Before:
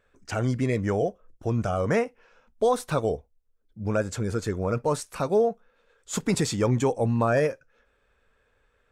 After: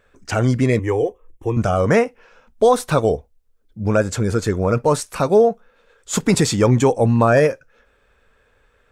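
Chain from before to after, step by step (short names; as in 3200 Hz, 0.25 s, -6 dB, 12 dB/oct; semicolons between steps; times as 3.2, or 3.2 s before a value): 0.79–1.57 fixed phaser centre 950 Hz, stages 8; gain +8.5 dB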